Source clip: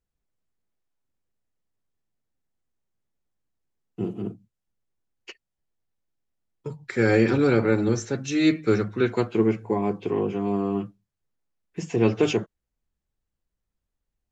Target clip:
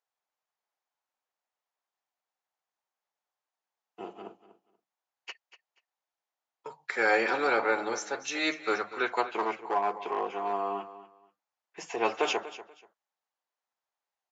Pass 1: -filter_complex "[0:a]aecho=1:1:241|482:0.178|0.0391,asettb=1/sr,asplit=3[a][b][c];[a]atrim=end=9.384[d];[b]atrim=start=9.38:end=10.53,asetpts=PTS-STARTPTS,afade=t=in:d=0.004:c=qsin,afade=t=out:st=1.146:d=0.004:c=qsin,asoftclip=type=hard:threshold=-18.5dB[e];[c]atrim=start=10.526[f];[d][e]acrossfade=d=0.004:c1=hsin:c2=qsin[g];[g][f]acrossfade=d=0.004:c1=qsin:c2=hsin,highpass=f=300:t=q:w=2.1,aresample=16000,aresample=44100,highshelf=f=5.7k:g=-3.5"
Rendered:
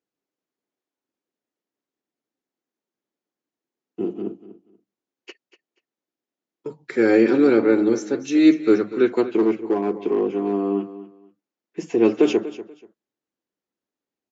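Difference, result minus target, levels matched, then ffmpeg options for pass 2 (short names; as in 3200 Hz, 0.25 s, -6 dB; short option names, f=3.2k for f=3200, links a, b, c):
1000 Hz band -14.0 dB
-filter_complex "[0:a]aecho=1:1:241|482:0.178|0.0391,asettb=1/sr,asplit=3[a][b][c];[a]atrim=end=9.384[d];[b]atrim=start=9.38:end=10.53,asetpts=PTS-STARTPTS,afade=t=in:d=0.004:c=qsin,afade=t=out:st=1.146:d=0.004:c=qsin,asoftclip=type=hard:threshold=-18.5dB[e];[c]atrim=start=10.526[f];[d][e]acrossfade=d=0.004:c1=hsin:c2=qsin[g];[g][f]acrossfade=d=0.004:c1=qsin:c2=hsin,highpass=f=810:t=q:w=2.1,aresample=16000,aresample=44100,highshelf=f=5.7k:g=-3.5"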